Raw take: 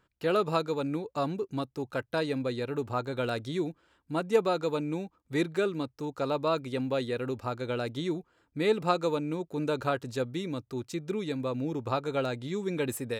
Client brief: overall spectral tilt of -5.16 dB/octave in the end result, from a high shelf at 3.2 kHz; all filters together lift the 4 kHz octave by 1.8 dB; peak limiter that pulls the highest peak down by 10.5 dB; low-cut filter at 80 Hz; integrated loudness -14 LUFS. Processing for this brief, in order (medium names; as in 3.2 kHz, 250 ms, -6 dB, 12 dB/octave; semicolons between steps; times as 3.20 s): high-pass 80 Hz; treble shelf 3.2 kHz -5.5 dB; peaking EQ 4 kHz +5.5 dB; trim +19.5 dB; peak limiter -2 dBFS